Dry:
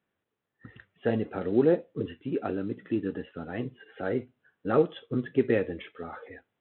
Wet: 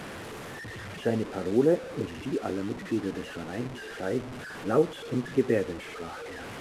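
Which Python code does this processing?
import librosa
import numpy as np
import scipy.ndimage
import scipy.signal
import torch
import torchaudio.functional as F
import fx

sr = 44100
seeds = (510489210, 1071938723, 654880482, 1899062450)

y = fx.delta_mod(x, sr, bps=64000, step_db=-32.5)
y = fx.high_shelf(y, sr, hz=3600.0, db=-9.5)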